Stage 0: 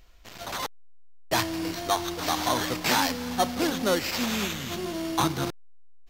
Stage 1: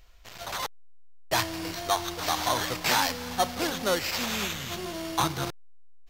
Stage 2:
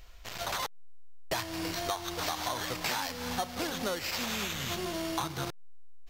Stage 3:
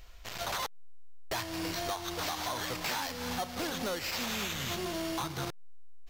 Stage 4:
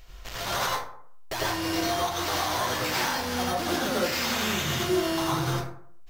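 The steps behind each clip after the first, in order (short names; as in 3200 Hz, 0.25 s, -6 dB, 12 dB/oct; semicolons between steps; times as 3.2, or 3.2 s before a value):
bell 260 Hz -7.5 dB 1.1 oct
compressor, threshold -35 dBFS, peak gain reduction 14 dB; gain +4 dB
hard clip -29.5 dBFS, distortion -14 dB
plate-style reverb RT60 0.59 s, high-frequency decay 0.5×, pre-delay 75 ms, DRR -5.5 dB; gain +1.5 dB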